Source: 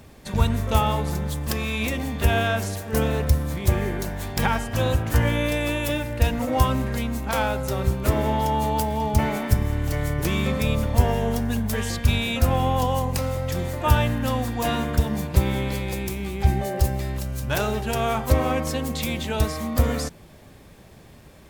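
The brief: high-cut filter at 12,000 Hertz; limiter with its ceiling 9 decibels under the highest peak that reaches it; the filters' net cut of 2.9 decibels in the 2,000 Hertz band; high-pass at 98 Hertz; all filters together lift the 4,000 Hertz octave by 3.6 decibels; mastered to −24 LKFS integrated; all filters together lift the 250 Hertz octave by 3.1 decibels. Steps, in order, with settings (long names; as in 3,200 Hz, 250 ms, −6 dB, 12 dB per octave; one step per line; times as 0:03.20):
high-pass filter 98 Hz
low-pass filter 12,000 Hz
parametric band 250 Hz +4 dB
parametric band 2,000 Hz −6 dB
parametric band 4,000 Hz +6.5 dB
level +1.5 dB
brickwall limiter −12.5 dBFS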